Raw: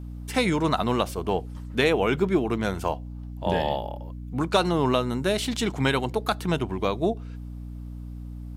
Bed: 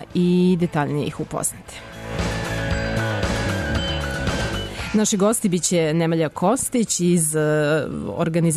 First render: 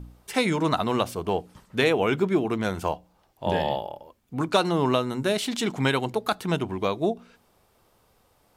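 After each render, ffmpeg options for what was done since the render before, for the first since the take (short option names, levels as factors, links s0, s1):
-af "bandreject=f=60:t=h:w=4,bandreject=f=120:t=h:w=4,bandreject=f=180:t=h:w=4,bandreject=f=240:t=h:w=4,bandreject=f=300:t=h:w=4"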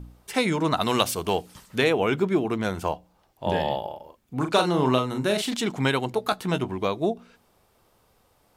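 -filter_complex "[0:a]asettb=1/sr,asplit=3[s0][s1][s2];[s0]atrim=end=0.814[s3];[s1]atrim=start=0.81:end=1.78,asetpts=PTS-STARTPTS,afade=t=in:d=0.004:c=qsin,afade=t=out:st=0.966:d=0.004:c=qsin,highshelf=f=2100:g=12[s4];[s2]atrim=start=1.776[s5];[s3][s4]acrossfade=d=0.004:c1=hsin:c2=qsin[s6];[s6][s5]acrossfade=d=0.004:c1=qsin:c2=hsin,asettb=1/sr,asplit=3[s7][s8][s9];[s7]atrim=end=3.794[s10];[s8]atrim=start=3.79:end=5.54,asetpts=PTS-STARTPTS,afade=t=in:d=0.004:c=qsin,afade=t=out:st=1.746:d=0.004:c=qsin,asplit=2[s11][s12];[s12]adelay=39,volume=0.473[s13];[s11][s13]amix=inputs=2:normalize=0,atrim=end_sample=77175[s14];[s9]atrim=start=5.536[s15];[s10][s14]acrossfade=d=0.004:c1=hsin:c2=qsin[s16];[s16][s15]acrossfade=d=0.004:c1=qsin:c2=hsin,asettb=1/sr,asplit=3[s17][s18][s19];[s17]atrim=end=6.154[s20];[s18]atrim=start=6.15:end=6.71,asetpts=PTS-STARTPTS,afade=t=in:d=0.004:c=qsin,afade=t=out:st=0.556:d=0.004:c=qsin,asplit=2[s21][s22];[s22]adelay=16,volume=0.335[s23];[s21][s23]amix=inputs=2:normalize=0,atrim=end_sample=24696[s24];[s19]atrim=start=6.706[s25];[s20][s24]acrossfade=d=0.004:c1=hsin:c2=qsin[s26];[s26][s25]acrossfade=d=0.004:c1=qsin:c2=hsin"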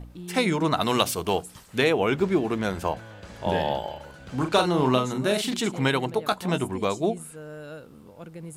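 -filter_complex "[1:a]volume=0.0891[s0];[0:a][s0]amix=inputs=2:normalize=0"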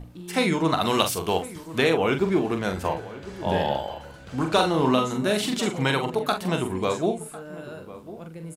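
-filter_complex "[0:a]asplit=2[s0][s1];[s1]adelay=43,volume=0.447[s2];[s0][s2]amix=inputs=2:normalize=0,asplit=2[s3][s4];[s4]adelay=1050,volume=0.158,highshelf=f=4000:g=-23.6[s5];[s3][s5]amix=inputs=2:normalize=0"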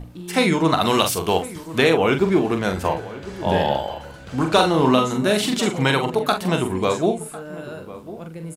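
-af "volume=1.68,alimiter=limit=0.794:level=0:latency=1"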